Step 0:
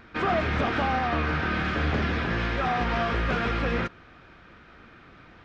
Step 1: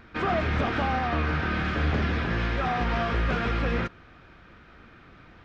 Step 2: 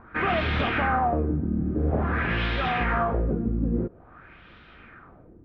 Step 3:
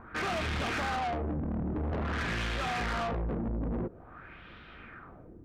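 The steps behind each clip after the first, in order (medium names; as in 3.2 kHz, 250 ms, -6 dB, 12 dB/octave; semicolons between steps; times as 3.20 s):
bass shelf 140 Hz +4.5 dB; trim -1.5 dB
LFO low-pass sine 0.49 Hz 250–3600 Hz
saturation -30 dBFS, distortion -8 dB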